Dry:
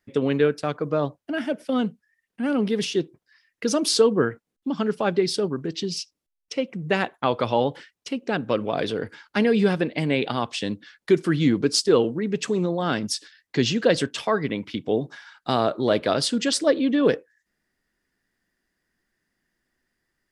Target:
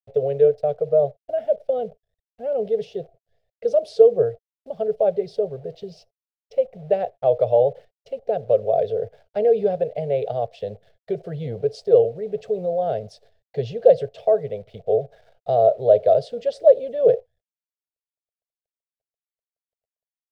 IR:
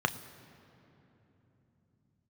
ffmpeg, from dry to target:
-af "acrusher=bits=8:dc=4:mix=0:aa=0.000001,firequalizer=gain_entry='entry(120,0);entry(300,-29);entry(430,5);entry(670,10);entry(970,-21);entry(2200,-18);entry(3800,-17);entry(6800,-26);entry(12000,-30)':delay=0.05:min_phase=1"

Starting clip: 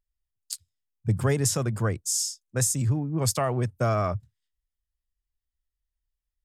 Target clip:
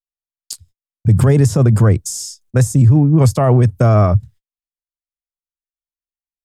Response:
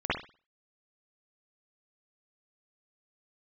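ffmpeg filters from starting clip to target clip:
-filter_complex "[0:a]agate=range=-45dB:threshold=-55dB:ratio=16:detection=peak,acrossover=split=1100[link_01][link_02];[link_01]lowshelf=frequency=310:gain=7.5[link_03];[link_02]acompressor=threshold=-37dB:ratio=6[link_04];[link_03][link_04]amix=inputs=2:normalize=0,alimiter=level_in=16dB:limit=-1dB:release=50:level=0:latency=1,volume=-3dB"

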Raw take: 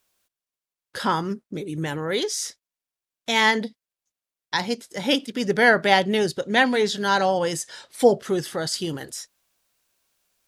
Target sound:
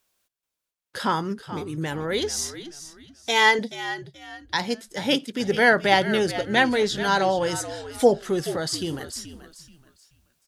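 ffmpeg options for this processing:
ffmpeg -i in.wav -filter_complex "[0:a]asettb=1/sr,asplit=3[link_01][link_02][link_03];[link_01]atrim=end=2.364[link_04];[link_02]atrim=start=2.36:end=3.59,asetpts=PTS-STARTPTS,afade=type=in:duration=0.004:curve=qsin,afade=type=out:start_time=1.226:duration=0.004:curve=qsin,aecho=1:1:2.5:0.66,atrim=end_sample=54243[link_05];[link_03]atrim=start=3.586[link_06];[link_04][link_05]acrossfade=duration=0.004:curve1=hsin:curve2=qsin[link_07];[link_07][link_06]acrossfade=duration=0.004:curve1=qsin:curve2=hsin,asplit=4[link_08][link_09][link_10][link_11];[link_09]adelay=430,afreqshift=-75,volume=-13dB[link_12];[link_10]adelay=860,afreqshift=-150,volume=-23.5dB[link_13];[link_11]adelay=1290,afreqshift=-225,volume=-33.9dB[link_14];[link_08][link_12][link_13][link_14]amix=inputs=4:normalize=0,volume=-1dB" out.wav

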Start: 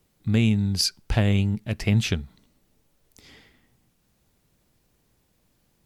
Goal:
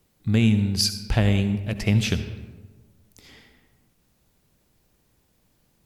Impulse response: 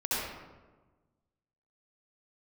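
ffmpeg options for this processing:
-filter_complex "[0:a]asplit=2[link_01][link_02];[1:a]atrim=start_sample=2205,highshelf=frequency=11000:gain=11.5[link_03];[link_02][link_03]afir=irnorm=-1:irlink=0,volume=-17.5dB[link_04];[link_01][link_04]amix=inputs=2:normalize=0"

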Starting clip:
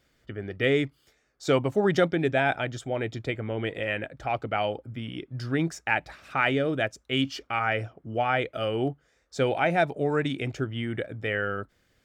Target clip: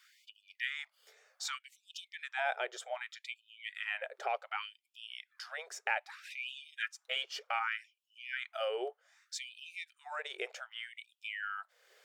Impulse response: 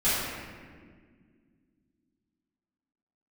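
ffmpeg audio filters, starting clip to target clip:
-filter_complex "[0:a]acompressor=threshold=-47dB:ratio=2,asettb=1/sr,asplit=3[link_01][link_02][link_03];[link_01]atrim=end=6.484[link_04];[link_02]atrim=start=6.48:end=7.25,asetpts=PTS-STARTPTS,afade=type=in:duration=0.004:curve=qsin,afade=type=out:start_time=0.766:duration=0.004:curve=qsin,aecho=1:1:6.2:0.53,atrim=end_sample=33957[link_05];[link_03]atrim=start=7.246[link_06];[link_04][link_05]acrossfade=duration=0.004:curve1=hsin:curve2=qsin[link_07];[link_07][link_06]acrossfade=duration=0.004:curve1=qsin:curve2=hsin,afftfilt=real='re*gte(b*sr/1024,370*pow(2500/370,0.5+0.5*sin(2*PI*0.65*pts/sr)))':imag='im*gte(b*sr/1024,370*pow(2500/370,0.5+0.5*sin(2*PI*0.65*pts/sr)))':win_size=1024:overlap=0.75,volume=6dB"

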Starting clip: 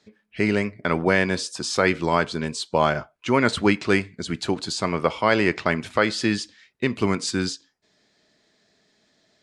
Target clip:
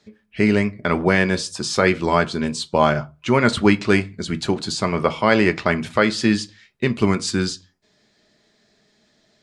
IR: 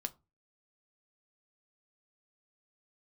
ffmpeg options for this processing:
-filter_complex "[0:a]asplit=2[link_01][link_02];[1:a]atrim=start_sample=2205,lowshelf=frequency=140:gain=8[link_03];[link_02][link_03]afir=irnorm=-1:irlink=0,volume=8.5dB[link_04];[link_01][link_04]amix=inputs=2:normalize=0,volume=-8dB"

